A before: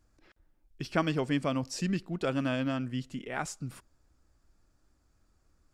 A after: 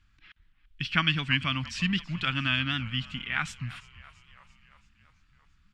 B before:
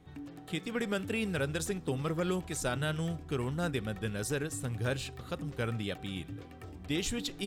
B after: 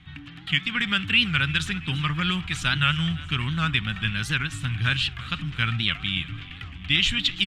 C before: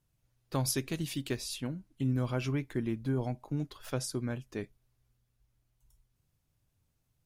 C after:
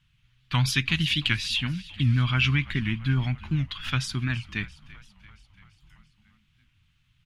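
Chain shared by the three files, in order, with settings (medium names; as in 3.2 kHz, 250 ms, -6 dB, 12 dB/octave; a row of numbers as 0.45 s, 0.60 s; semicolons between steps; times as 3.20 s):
FFT filter 170 Hz 0 dB, 290 Hz -10 dB, 480 Hz -25 dB, 1.2 kHz +1 dB, 3.1 kHz +12 dB, 5.1 kHz -4 dB, 14 kHz -18 dB; frequency-shifting echo 338 ms, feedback 63%, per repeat -56 Hz, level -19.5 dB; warped record 78 rpm, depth 160 cents; peak normalisation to -6 dBFS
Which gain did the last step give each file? +4.0 dB, +9.0 dB, +10.0 dB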